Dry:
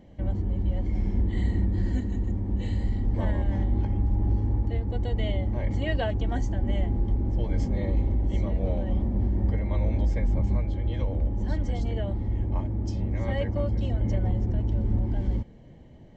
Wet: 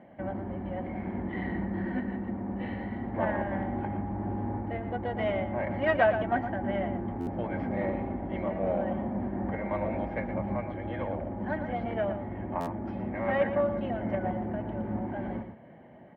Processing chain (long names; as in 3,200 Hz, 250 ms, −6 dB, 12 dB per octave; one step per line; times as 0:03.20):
stylus tracing distortion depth 0.13 ms
loudspeaker in its box 270–2,200 Hz, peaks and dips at 300 Hz −6 dB, 450 Hz −8 dB, 690 Hz +4 dB, 1,500 Hz +4 dB
slap from a distant wall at 20 metres, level −9 dB
buffer that repeats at 0:07.20/0:12.60, samples 512, times 5
level +6 dB